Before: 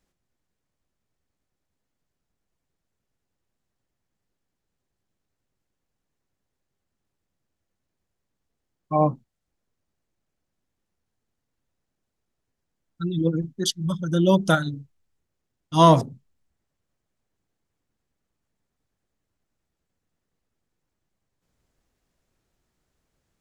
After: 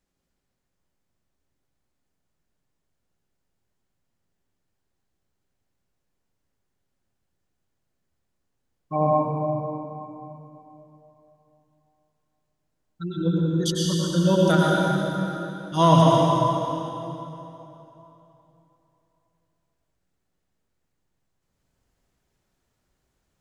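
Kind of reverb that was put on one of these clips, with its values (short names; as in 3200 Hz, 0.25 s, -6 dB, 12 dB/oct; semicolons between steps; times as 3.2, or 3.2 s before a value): plate-style reverb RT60 3.3 s, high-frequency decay 0.8×, pre-delay 85 ms, DRR -4.5 dB; gain -4 dB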